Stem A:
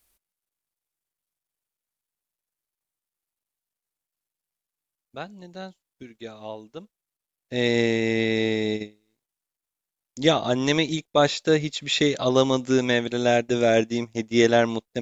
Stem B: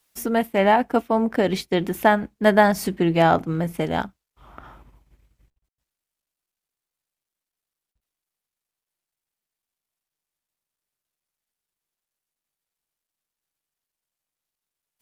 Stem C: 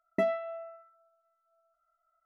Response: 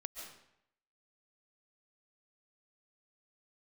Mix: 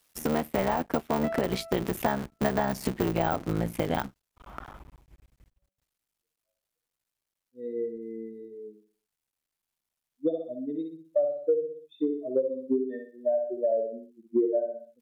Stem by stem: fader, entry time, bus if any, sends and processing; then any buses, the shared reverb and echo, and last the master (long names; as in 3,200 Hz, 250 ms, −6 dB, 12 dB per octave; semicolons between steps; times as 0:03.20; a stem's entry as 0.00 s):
+2.0 dB, 0.00 s, no send, echo send −5.5 dB, bit-depth reduction 6 bits, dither triangular; every bin expanded away from the loudest bin 4 to 1
+2.0 dB, 0.00 s, no send, no echo send, sub-harmonics by changed cycles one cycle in 3, muted; de-essing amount 60%
−1.5 dB, 1.05 s, no send, no echo send, no processing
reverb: not used
echo: repeating echo 62 ms, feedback 36%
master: downward compressor 6 to 1, threshold −23 dBFS, peak gain reduction 15.5 dB